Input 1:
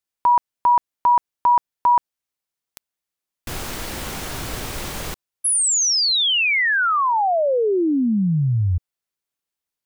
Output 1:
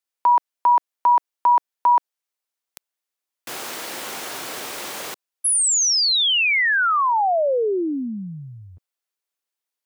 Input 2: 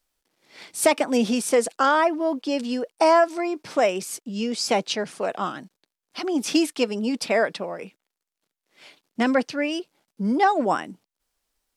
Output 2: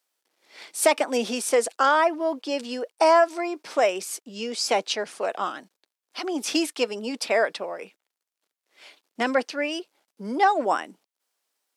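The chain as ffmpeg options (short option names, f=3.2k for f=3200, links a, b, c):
-af "highpass=370"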